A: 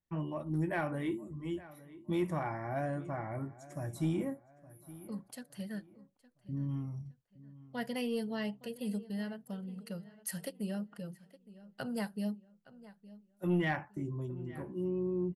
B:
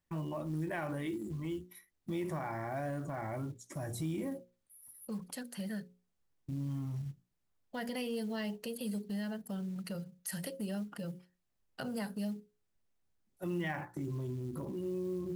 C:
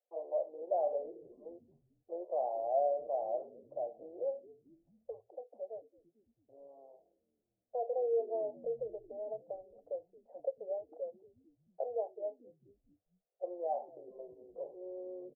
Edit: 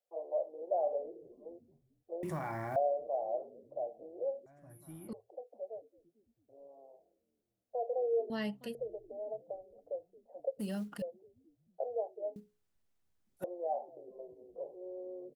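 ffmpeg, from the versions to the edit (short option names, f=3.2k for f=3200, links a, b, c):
-filter_complex "[1:a]asplit=3[a][b][c];[0:a]asplit=2[d][e];[2:a]asplit=6[f][g][h][i][j][k];[f]atrim=end=2.232[l];[a]atrim=start=2.228:end=2.762[m];[g]atrim=start=2.758:end=4.462[n];[d]atrim=start=4.458:end=5.132[o];[h]atrim=start=5.128:end=8.302[p];[e]atrim=start=8.298:end=8.752[q];[i]atrim=start=8.748:end=10.592[r];[b]atrim=start=10.588:end=11.022[s];[j]atrim=start=11.018:end=12.362[t];[c]atrim=start=12.358:end=13.442[u];[k]atrim=start=13.438[v];[l][m]acrossfade=d=0.004:c1=hsin:c2=hsin[w];[w][n]acrossfade=d=0.004:c1=hsin:c2=hsin[x];[x][o]acrossfade=d=0.004:c1=hsin:c2=hsin[y];[y][p]acrossfade=d=0.004:c1=hsin:c2=hsin[z];[z][q]acrossfade=d=0.004:c1=hsin:c2=hsin[aa];[aa][r]acrossfade=d=0.004:c1=hsin:c2=hsin[ab];[ab][s]acrossfade=d=0.004:c1=hsin:c2=hsin[ac];[ac][t]acrossfade=d=0.004:c1=hsin:c2=hsin[ad];[ad][u]acrossfade=d=0.004:c1=hsin:c2=hsin[ae];[ae][v]acrossfade=d=0.004:c1=hsin:c2=hsin"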